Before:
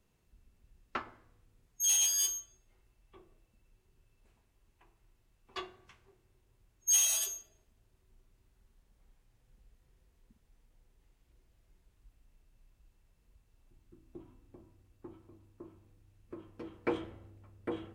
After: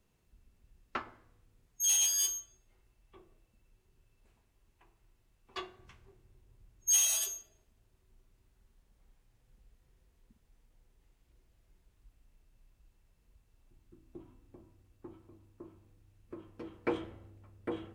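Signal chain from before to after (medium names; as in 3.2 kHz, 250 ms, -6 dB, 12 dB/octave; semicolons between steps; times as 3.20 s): 5.79–6.91 s: bass shelf 260 Hz +8 dB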